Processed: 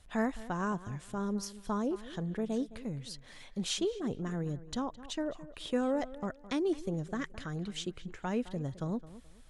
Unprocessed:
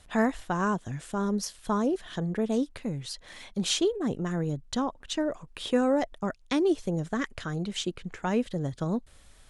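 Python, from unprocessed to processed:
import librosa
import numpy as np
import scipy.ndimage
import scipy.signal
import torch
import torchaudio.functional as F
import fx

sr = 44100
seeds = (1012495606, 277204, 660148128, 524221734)

y = fx.low_shelf(x, sr, hz=92.0, db=6.5)
y = fx.echo_tape(y, sr, ms=213, feedback_pct=29, wet_db=-14.5, lp_hz=2800.0, drive_db=17.0, wow_cents=6)
y = y * 10.0 ** (-7.0 / 20.0)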